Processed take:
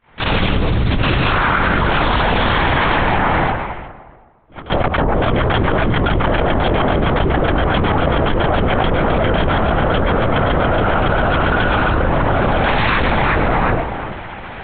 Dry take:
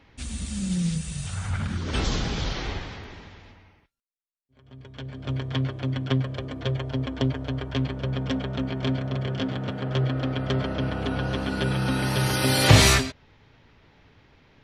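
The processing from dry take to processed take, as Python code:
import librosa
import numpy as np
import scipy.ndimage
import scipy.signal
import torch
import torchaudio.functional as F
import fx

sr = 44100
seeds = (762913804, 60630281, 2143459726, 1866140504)

p1 = fx.fade_in_head(x, sr, length_s=0.9)
p2 = fx.tilt_eq(p1, sr, slope=-3.5, at=(11.94, 12.65))
p3 = fx.leveller(p2, sr, passes=3)
p4 = fx.bandpass_q(p3, sr, hz=990.0, q=0.84)
p5 = fx.env_lowpass_down(p4, sr, base_hz=1200.0, full_db=-42.0, at=(3.14, 5.17))
p6 = p5 + fx.echo_tape(p5, sr, ms=365, feedback_pct=22, wet_db=-14, lp_hz=1300.0, drive_db=5.0, wow_cents=10, dry=0)
p7 = fx.lpc_vocoder(p6, sr, seeds[0], excitation='whisper', order=8)
p8 = fx.env_flatten(p7, sr, amount_pct=100)
y = p8 * librosa.db_to_amplitude(-1.0)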